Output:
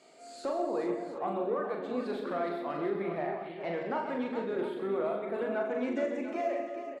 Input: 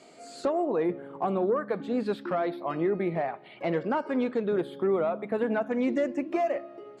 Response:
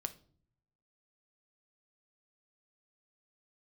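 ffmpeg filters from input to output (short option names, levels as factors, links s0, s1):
-filter_complex "[0:a]equalizer=f=82:w=0.38:g=-8,aecho=1:1:86|131|174|286|416|696:0.266|0.316|0.224|0.15|0.335|0.224,asplit=2[s0][s1];[1:a]atrim=start_sample=2205,adelay=40[s2];[s1][s2]afir=irnorm=-1:irlink=0,volume=0.708[s3];[s0][s3]amix=inputs=2:normalize=0,volume=0.501"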